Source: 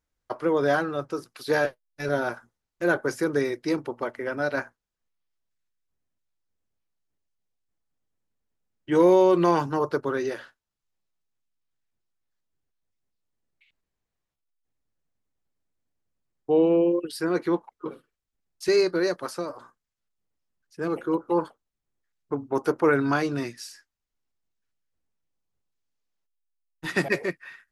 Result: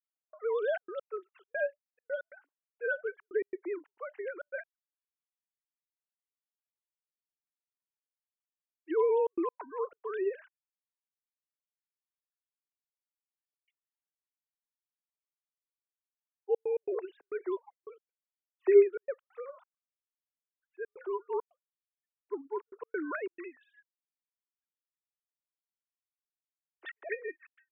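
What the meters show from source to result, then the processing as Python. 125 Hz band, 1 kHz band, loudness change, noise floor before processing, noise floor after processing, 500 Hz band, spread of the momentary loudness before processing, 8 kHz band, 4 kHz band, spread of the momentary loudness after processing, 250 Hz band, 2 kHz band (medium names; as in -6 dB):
under -40 dB, -13.0 dB, -8.5 dB, -85 dBFS, under -85 dBFS, -6.5 dB, 16 LU, under -35 dB, under -20 dB, 18 LU, -16.0 dB, -10.5 dB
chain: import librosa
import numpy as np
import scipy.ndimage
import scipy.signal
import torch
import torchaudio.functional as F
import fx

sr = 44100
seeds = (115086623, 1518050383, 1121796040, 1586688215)

y = fx.sine_speech(x, sr)
y = scipy.signal.sosfilt(scipy.signal.butter(4, 320.0, 'highpass', fs=sr, output='sos'), y)
y = fx.step_gate(y, sr, bpm=136, pattern='xx.xxxx.x.x', floor_db=-60.0, edge_ms=4.5)
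y = F.gain(torch.from_numpy(y), -7.0).numpy()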